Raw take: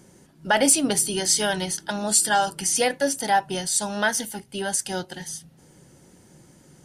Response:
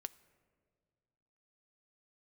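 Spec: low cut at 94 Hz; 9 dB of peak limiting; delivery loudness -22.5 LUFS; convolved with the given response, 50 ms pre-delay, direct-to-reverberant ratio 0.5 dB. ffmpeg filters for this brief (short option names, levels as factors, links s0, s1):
-filter_complex "[0:a]highpass=94,alimiter=limit=0.178:level=0:latency=1,asplit=2[s0][s1];[1:a]atrim=start_sample=2205,adelay=50[s2];[s1][s2]afir=irnorm=-1:irlink=0,volume=1.5[s3];[s0][s3]amix=inputs=2:normalize=0,volume=1.06"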